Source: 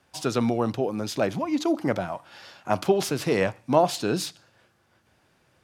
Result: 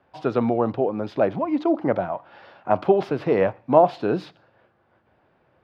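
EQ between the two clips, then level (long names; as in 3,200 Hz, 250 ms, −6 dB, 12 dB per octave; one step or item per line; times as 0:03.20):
high-frequency loss of the air 360 metres
parametric band 640 Hz +7.5 dB 2.2 octaves
−1.0 dB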